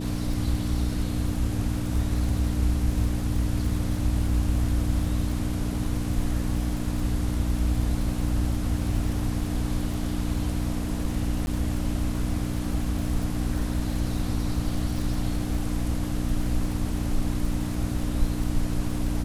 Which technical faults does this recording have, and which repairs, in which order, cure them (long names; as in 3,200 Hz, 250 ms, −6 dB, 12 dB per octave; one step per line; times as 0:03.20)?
surface crackle 49 per second −32 dBFS
mains hum 60 Hz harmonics 5 −30 dBFS
0:11.46–0:11.47: drop-out 11 ms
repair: click removal
hum removal 60 Hz, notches 5
repair the gap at 0:11.46, 11 ms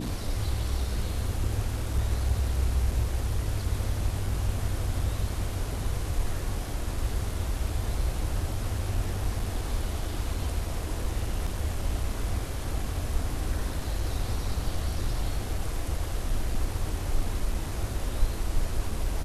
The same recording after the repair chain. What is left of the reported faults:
none of them is left